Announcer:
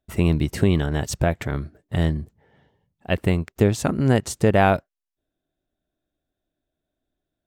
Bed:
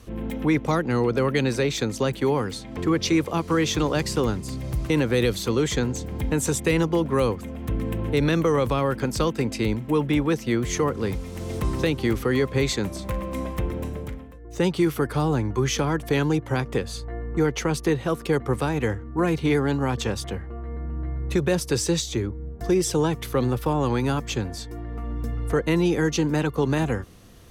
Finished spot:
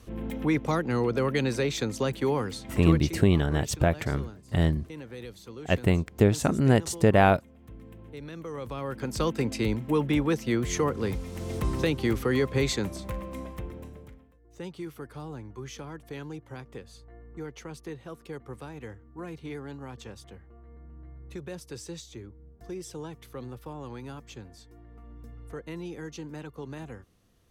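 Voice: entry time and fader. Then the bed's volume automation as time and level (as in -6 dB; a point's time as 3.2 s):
2.60 s, -2.5 dB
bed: 2.89 s -4 dB
3.2 s -20 dB
8.31 s -20 dB
9.3 s -3 dB
12.77 s -3 dB
14.34 s -17 dB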